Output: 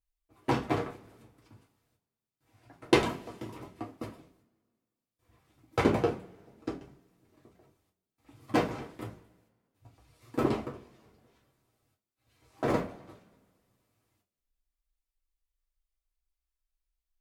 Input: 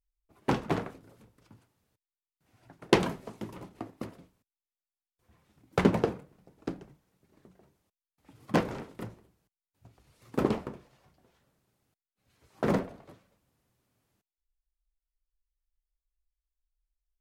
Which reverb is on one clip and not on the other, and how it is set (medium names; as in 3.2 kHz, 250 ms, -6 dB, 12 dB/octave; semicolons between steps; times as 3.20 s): two-slope reverb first 0.22 s, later 1.7 s, from -27 dB, DRR -3 dB; trim -4 dB